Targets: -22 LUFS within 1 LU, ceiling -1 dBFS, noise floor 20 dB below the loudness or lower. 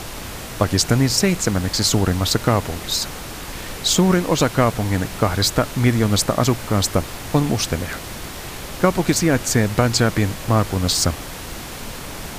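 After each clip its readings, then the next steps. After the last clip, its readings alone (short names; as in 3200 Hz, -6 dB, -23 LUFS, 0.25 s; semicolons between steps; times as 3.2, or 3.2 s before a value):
noise floor -33 dBFS; noise floor target -39 dBFS; loudness -19.0 LUFS; peak -1.5 dBFS; loudness target -22.0 LUFS
-> noise print and reduce 6 dB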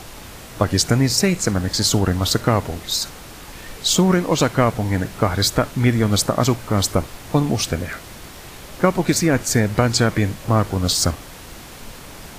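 noise floor -39 dBFS; loudness -19.0 LUFS; peak -1.0 dBFS; loudness target -22.0 LUFS
-> gain -3 dB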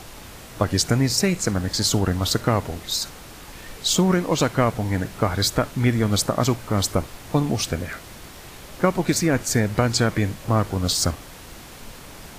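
loudness -22.0 LUFS; peak -4.0 dBFS; noise floor -42 dBFS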